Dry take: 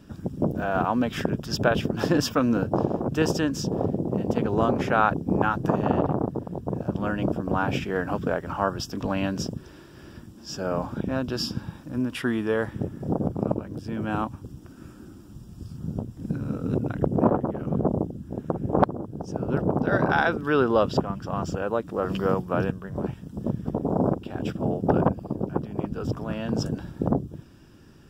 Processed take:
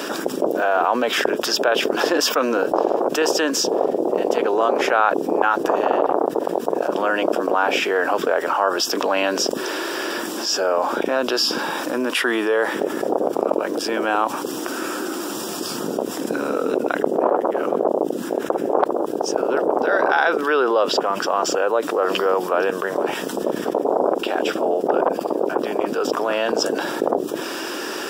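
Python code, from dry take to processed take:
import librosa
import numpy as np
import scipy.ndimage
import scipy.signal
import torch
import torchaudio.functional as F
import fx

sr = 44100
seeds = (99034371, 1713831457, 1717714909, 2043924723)

y = scipy.signal.sosfilt(scipy.signal.butter(4, 390.0, 'highpass', fs=sr, output='sos'), x)
y = fx.env_flatten(y, sr, amount_pct=70)
y = y * librosa.db_to_amplitude(1.5)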